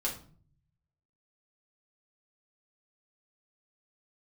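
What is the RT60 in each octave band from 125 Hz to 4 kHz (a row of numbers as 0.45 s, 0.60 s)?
1.3 s, 0.75 s, 0.50 s, 0.45 s, 0.35 s, 0.35 s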